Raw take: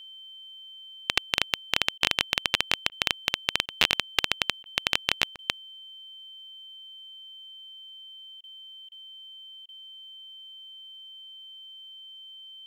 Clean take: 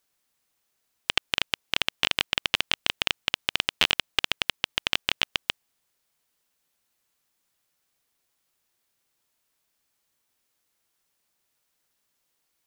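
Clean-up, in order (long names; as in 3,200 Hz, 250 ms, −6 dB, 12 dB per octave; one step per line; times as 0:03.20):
notch filter 3,100 Hz, Q 30
repair the gap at 0:01.98/0:02.89/0:03.66/0:04.63/0:05.36/0:08.41/0:08.89/0:09.66, 26 ms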